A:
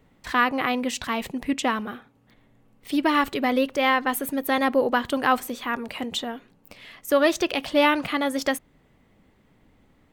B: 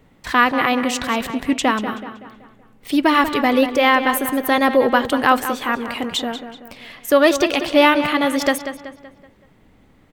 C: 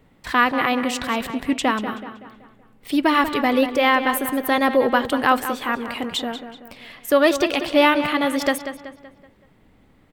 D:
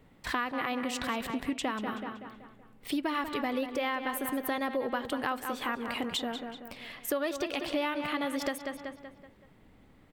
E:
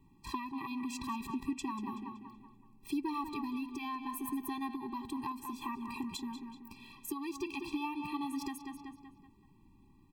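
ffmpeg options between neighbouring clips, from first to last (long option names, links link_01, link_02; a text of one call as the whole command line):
ffmpeg -i in.wav -filter_complex "[0:a]asplit=2[link_01][link_02];[link_02]adelay=189,lowpass=frequency=4500:poles=1,volume=-10dB,asplit=2[link_03][link_04];[link_04]adelay=189,lowpass=frequency=4500:poles=1,volume=0.46,asplit=2[link_05][link_06];[link_06]adelay=189,lowpass=frequency=4500:poles=1,volume=0.46,asplit=2[link_07][link_08];[link_08]adelay=189,lowpass=frequency=4500:poles=1,volume=0.46,asplit=2[link_09][link_10];[link_10]adelay=189,lowpass=frequency=4500:poles=1,volume=0.46[link_11];[link_01][link_03][link_05][link_07][link_09][link_11]amix=inputs=6:normalize=0,volume=6dB" out.wav
ffmpeg -i in.wav -af "equalizer=frequency=6300:width=3.8:gain=-3.5,volume=-2.5dB" out.wav
ffmpeg -i in.wav -af "acompressor=threshold=-26dB:ratio=5,volume=-3.5dB" out.wav
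ffmpeg -i in.wav -af "asuperstop=centerf=1700:order=4:qfactor=3,equalizer=frequency=3300:width=7.6:gain=-7.5,afftfilt=real='re*eq(mod(floor(b*sr/1024/390),2),0)':imag='im*eq(mod(floor(b*sr/1024/390),2),0)':win_size=1024:overlap=0.75,volume=-3dB" out.wav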